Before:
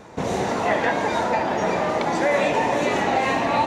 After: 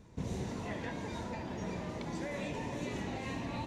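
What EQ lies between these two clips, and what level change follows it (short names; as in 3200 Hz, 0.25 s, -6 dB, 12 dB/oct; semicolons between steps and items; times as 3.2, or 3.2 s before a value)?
passive tone stack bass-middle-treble 10-0-1; bell 990 Hz +8.5 dB 0.32 oct; +6.0 dB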